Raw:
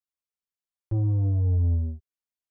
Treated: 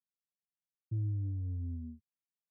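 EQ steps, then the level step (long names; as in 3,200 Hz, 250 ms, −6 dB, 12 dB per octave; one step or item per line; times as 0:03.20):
flat-topped band-pass 170 Hz, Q 1.9
+1.5 dB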